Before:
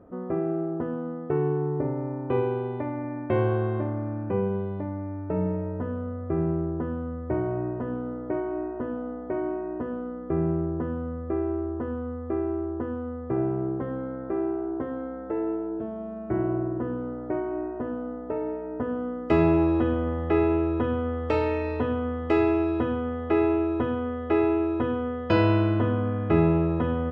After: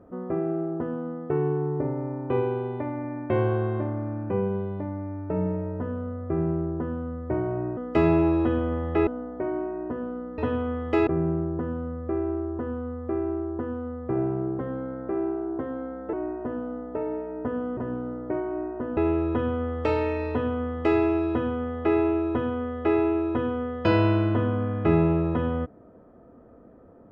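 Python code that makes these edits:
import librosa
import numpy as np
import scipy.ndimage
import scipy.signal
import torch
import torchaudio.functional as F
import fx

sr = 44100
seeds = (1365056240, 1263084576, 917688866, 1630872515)

y = fx.edit(x, sr, fx.swap(start_s=7.77, length_s=1.2, other_s=19.12, other_length_s=1.3),
    fx.cut(start_s=15.34, length_s=2.14),
    fx.duplicate(start_s=21.75, length_s=0.69, to_s=10.28), tone=tone)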